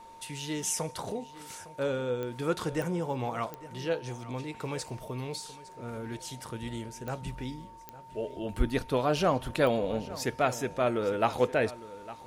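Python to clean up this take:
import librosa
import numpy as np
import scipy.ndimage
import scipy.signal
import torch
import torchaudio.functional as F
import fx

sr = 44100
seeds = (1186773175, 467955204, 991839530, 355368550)

y = fx.fix_declick_ar(x, sr, threshold=10.0)
y = fx.notch(y, sr, hz=910.0, q=30.0)
y = fx.fix_echo_inverse(y, sr, delay_ms=858, level_db=-17.0)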